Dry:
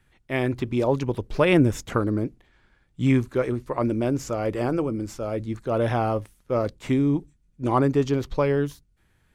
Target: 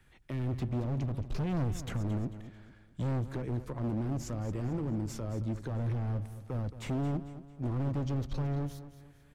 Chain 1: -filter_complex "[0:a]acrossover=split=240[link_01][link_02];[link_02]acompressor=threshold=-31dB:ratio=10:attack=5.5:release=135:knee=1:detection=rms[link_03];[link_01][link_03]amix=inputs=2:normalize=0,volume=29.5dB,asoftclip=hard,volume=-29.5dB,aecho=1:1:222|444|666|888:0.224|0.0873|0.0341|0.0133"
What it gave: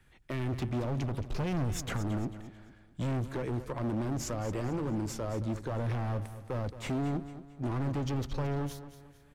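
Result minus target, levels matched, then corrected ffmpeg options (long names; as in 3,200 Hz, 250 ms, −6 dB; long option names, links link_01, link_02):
downward compressor: peak gain reduction −8 dB
-filter_complex "[0:a]acrossover=split=240[link_01][link_02];[link_02]acompressor=threshold=-40dB:ratio=10:attack=5.5:release=135:knee=1:detection=rms[link_03];[link_01][link_03]amix=inputs=2:normalize=0,volume=29.5dB,asoftclip=hard,volume=-29.5dB,aecho=1:1:222|444|666|888:0.224|0.0873|0.0341|0.0133"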